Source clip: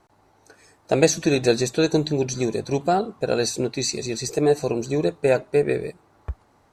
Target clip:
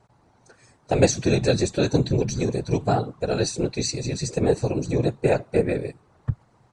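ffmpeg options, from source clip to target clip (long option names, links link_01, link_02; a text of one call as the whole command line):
ffmpeg -i in.wav -af "afftfilt=real='hypot(re,im)*cos(2*PI*random(0))':imag='hypot(re,im)*sin(2*PI*random(1))':win_size=512:overlap=0.75,equalizer=frequency=120:width_type=o:width=0.85:gain=12,aresample=22050,aresample=44100,volume=3.5dB" out.wav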